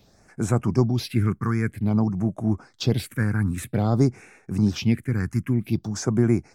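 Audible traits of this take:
phaser sweep stages 4, 0.52 Hz, lowest notch 600–4,400 Hz

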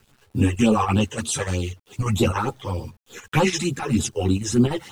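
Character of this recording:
phaser sweep stages 12, 3.3 Hz, lowest notch 220–2,100 Hz
a quantiser's noise floor 10 bits, dither none
chopped level 3.4 Hz, depth 60%, duty 85%
a shimmering, thickened sound

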